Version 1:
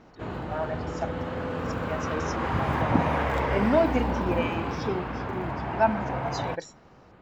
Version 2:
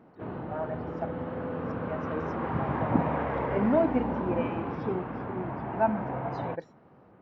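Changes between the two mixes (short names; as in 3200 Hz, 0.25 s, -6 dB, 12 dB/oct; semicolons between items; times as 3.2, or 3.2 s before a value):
background: add HPF 120 Hz 12 dB/oct; master: add tape spacing loss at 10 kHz 43 dB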